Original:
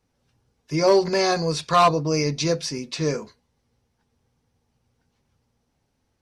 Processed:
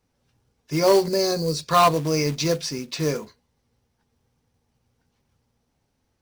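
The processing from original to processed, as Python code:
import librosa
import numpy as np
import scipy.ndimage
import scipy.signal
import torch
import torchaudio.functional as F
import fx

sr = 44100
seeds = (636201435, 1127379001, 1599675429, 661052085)

y = fx.quant_float(x, sr, bits=2)
y = fx.spec_box(y, sr, start_s=1.06, length_s=0.62, low_hz=620.0, high_hz=3800.0, gain_db=-10)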